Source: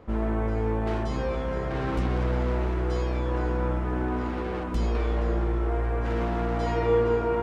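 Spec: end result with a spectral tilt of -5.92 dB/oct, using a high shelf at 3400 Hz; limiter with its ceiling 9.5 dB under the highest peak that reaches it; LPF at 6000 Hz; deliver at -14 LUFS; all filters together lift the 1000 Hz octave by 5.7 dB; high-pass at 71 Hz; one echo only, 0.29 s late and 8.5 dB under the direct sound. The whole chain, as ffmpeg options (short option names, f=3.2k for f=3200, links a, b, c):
-af "highpass=71,lowpass=6k,equalizer=f=1k:t=o:g=6.5,highshelf=f=3.4k:g=7.5,alimiter=limit=-19dB:level=0:latency=1,aecho=1:1:290:0.376,volume=13.5dB"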